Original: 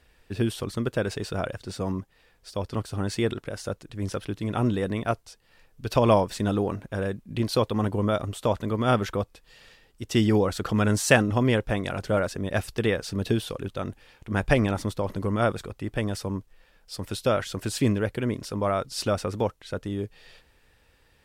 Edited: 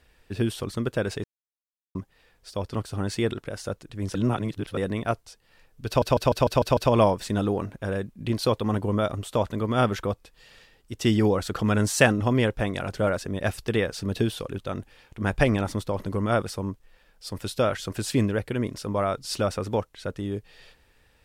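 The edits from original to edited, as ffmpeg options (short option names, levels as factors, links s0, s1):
-filter_complex "[0:a]asplit=12[s0][s1][s2][s3][s4][s5][s6][s7][s8][s9][s10][s11];[s0]atrim=end=1.24,asetpts=PTS-STARTPTS,afade=t=out:st=1.236:d=0.004:c=hsin[s12];[s1]atrim=start=1.24:end=1.95,asetpts=PTS-STARTPTS,volume=0[s13];[s2]atrim=start=1.95:end=4.152,asetpts=PTS-STARTPTS,afade=t=in:d=0.004:c=hsin[s14];[s3]atrim=start=4.148:end=4.772,asetpts=PTS-STARTPTS,areverse[s15];[s4]atrim=start=4.768:end=6.022[s16];[s5]atrim=start=5.868:end=6.022[s17];[s6]atrim=start=5.868:end=6.022[s18];[s7]atrim=start=5.868:end=6.022[s19];[s8]atrim=start=5.868:end=6.022[s20];[s9]atrim=start=5.868:end=6.022[s21];[s10]atrim=start=5.868:end=15.582[s22];[s11]atrim=start=16.148[s23];[s12][s13][s14]concat=n=3:v=0:a=1[s24];[s24][s15]acrossfade=d=0.004:c1=hsin:c2=hsin[s25];[s25][s16]acrossfade=d=0.004:c1=hsin:c2=hsin[s26];[s26][s17]acrossfade=d=0.004:c1=hsin:c2=hsin[s27];[s27][s18]acrossfade=d=0.004:c1=hsin:c2=hsin[s28];[s28][s19]acrossfade=d=0.004:c1=hsin:c2=hsin[s29];[s29][s20]acrossfade=d=0.004:c1=hsin:c2=hsin[s30];[s30][s21]acrossfade=d=0.004:c1=hsin:c2=hsin[s31];[s31][s22]acrossfade=d=0.004:c1=hsin:c2=hsin[s32];[s32][s23]acrossfade=d=0.004:c1=hsin:c2=hsin"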